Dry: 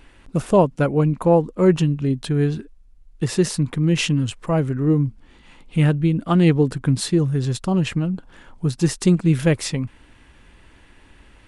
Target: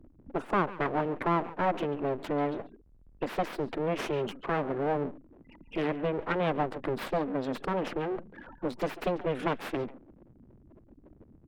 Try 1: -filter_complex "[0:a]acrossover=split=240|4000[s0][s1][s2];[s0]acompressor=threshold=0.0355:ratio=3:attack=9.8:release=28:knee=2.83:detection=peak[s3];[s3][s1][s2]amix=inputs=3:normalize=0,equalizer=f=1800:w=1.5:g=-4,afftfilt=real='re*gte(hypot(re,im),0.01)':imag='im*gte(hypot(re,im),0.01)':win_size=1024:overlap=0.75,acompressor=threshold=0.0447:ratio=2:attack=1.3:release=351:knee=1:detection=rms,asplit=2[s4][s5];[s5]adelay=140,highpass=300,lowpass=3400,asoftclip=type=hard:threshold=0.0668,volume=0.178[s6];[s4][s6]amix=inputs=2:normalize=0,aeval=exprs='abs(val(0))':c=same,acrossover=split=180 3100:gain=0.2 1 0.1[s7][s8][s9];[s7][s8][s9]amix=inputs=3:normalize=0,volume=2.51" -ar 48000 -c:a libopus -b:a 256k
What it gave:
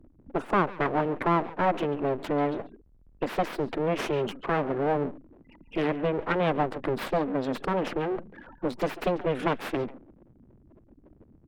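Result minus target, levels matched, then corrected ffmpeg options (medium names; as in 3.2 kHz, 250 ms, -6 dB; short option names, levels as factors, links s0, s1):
compression: peak gain reduction -3.5 dB
-filter_complex "[0:a]acrossover=split=240|4000[s0][s1][s2];[s0]acompressor=threshold=0.0355:ratio=3:attack=9.8:release=28:knee=2.83:detection=peak[s3];[s3][s1][s2]amix=inputs=3:normalize=0,equalizer=f=1800:w=1.5:g=-4,afftfilt=real='re*gte(hypot(re,im),0.01)':imag='im*gte(hypot(re,im),0.01)':win_size=1024:overlap=0.75,acompressor=threshold=0.0211:ratio=2:attack=1.3:release=351:knee=1:detection=rms,asplit=2[s4][s5];[s5]adelay=140,highpass=300,lowpass=3400,asoftclip=type=hard:threshold=0.0668,volume=0.178[s6];[s4][s6]amix=inputs=2:normalize=0,aeval=exprs='abs(val(0))':c=same,acrossover=split=180 3100:gain=0.2 1 0.1[s7][s8][s9];[s7][s8][s9]amix=inputs=3:normalize=0,volume=2.51" -ar 48000 -c:a libopus -b:a 256k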